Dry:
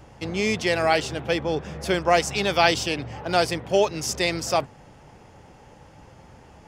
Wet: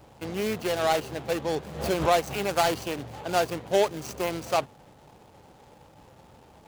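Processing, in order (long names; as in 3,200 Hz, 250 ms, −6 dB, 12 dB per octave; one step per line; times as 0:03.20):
running median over 25 samples
spectral tilt +2 dB per octave
0:01.59–0:02.41: background raised ahead of every attack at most 91 dB per second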